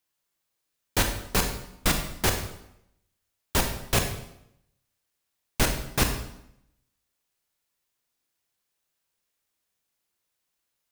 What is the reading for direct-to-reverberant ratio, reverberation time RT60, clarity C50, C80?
4.0 dB, 0.80 s, 7.0 dB, 9.5 dB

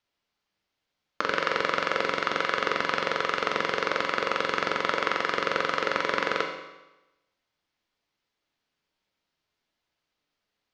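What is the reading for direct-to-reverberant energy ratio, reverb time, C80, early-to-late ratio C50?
2.0 dB, 1.0 s, 8.0 dB, 6.0 dB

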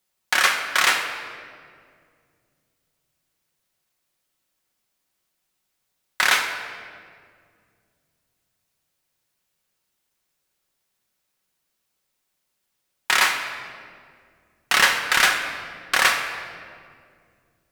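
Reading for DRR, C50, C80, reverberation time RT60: 3.0 dB, 6.0 dB, 7.5 dB, 2.1 s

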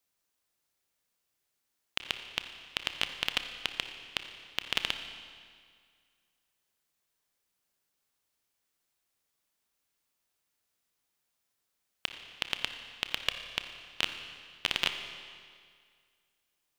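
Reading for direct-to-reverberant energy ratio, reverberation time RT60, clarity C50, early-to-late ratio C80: 7.0 dB, 2.0 s, 8.0 dB, 9.0 dB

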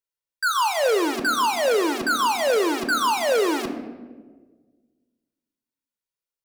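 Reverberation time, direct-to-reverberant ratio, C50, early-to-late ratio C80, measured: 1.5 s, 7.5 dB, 10.0 dB, 11.0 dB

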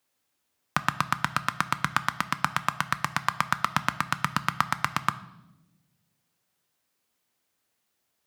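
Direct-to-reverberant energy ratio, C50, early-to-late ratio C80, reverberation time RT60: 12.0 dB, 16.0 dB, 18.5 dB, 1.0 s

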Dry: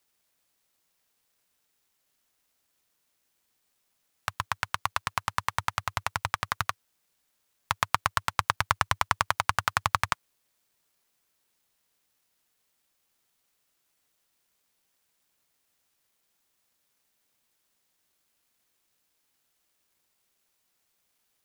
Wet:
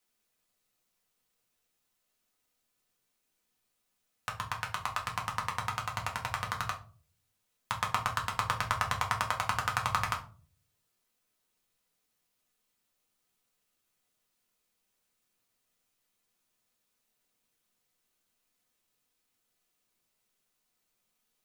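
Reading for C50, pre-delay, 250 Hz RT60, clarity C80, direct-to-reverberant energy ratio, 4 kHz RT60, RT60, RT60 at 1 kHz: 11.5 dB, 4 ms, 0.60 s, 17.0 dB, -1.0 dB, 0.25 s, 0.40 s, 0.35 s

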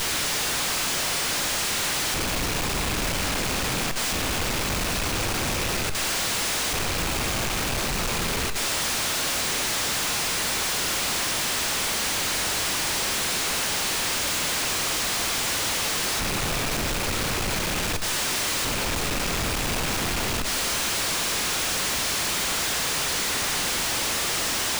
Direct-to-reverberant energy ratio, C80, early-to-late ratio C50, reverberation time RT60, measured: 9.0 dB, 13.0 dB, 10.5 dB, not exponential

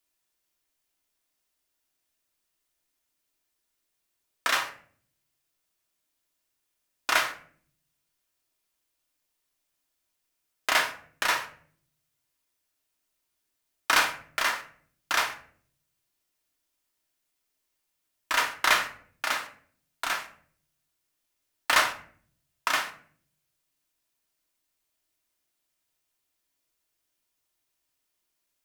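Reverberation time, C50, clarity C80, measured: 0.55 s, 12.0 dB, 16.0 dB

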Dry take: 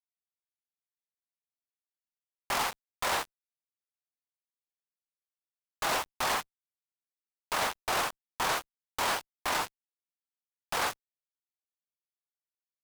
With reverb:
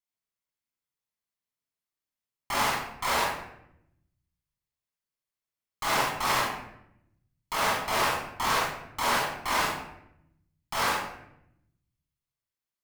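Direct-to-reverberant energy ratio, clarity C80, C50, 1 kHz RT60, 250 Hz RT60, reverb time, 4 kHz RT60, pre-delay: -6.0 dB, 4.0 dB, -0.5 dB, 0.70 s, 1.2 s, 0.80 s, 0.55 s, 28 ms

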